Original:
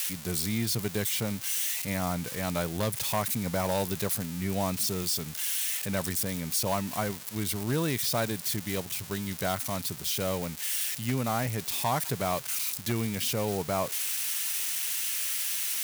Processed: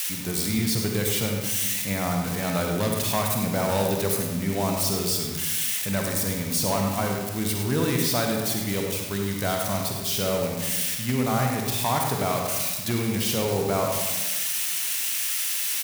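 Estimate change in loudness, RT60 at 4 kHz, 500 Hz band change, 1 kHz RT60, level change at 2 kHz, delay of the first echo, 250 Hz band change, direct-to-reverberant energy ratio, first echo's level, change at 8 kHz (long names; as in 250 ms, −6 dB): +4.5 dB, 0.70 s, +6.0 dB, 1.1 s, +5.0 dB, 101 ms, +6.0 dB, 1.0 dB, −10.0 dB, +4.0 dB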